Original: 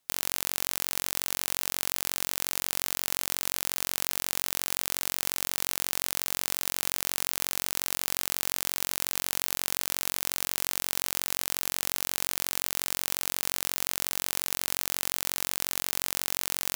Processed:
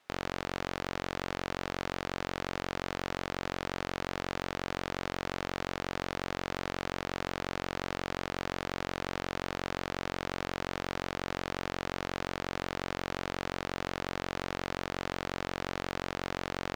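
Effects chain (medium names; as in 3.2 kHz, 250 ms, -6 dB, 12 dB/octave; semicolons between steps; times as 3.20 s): low-pass 3.4 kHz 6 dB/octave; peaking EQ 990 Hz -2 dB 0.3 oct; overdrive pedal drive 27 dB, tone 1.5 kHz, clips at -10 dBFS; trim -2 dB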